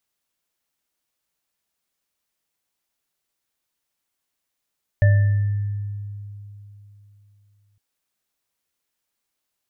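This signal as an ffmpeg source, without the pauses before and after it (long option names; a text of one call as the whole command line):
ffmpeg -f lavfi -i "aevalsrc='0.299*pow(10,-3*t/3.29)*sin(2*PI*102*t)+0.075*pow(10,-3*t/0.69)*sin(2*PI*590*t)+0.0531*pow(10,-3*t/1.21)*sin(2*PI*1770*t)':duration=2.76:sample_rate=44100" out.wav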